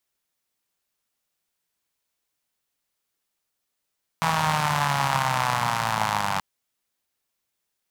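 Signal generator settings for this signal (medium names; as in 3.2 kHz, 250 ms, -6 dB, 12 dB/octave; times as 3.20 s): four-cylinder engine model, changing speed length 2.18 s, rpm 4900, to 2900, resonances 150/910 Hz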